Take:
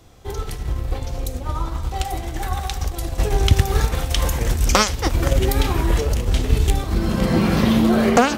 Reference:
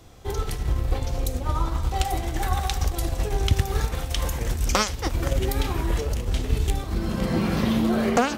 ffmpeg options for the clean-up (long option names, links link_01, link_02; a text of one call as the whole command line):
ffmpeg -i in.wav -af "asetnsamples=nb_out_samples=441:pad=0,asendcmd='3.18 volume volume -6dB',volume=0dB" out.wav